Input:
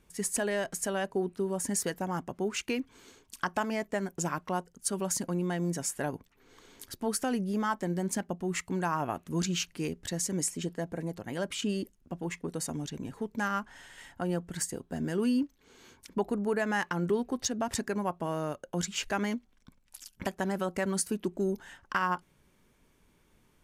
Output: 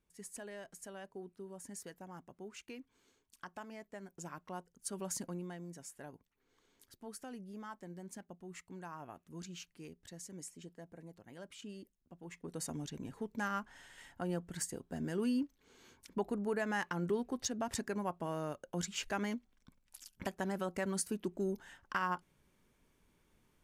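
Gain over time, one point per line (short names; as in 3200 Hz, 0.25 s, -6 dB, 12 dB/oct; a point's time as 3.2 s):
3.92 s -17 dB
5.2 s -8 dB
5.67 s -17 dB
12.16 s -17 dB
12.62 s -6 dB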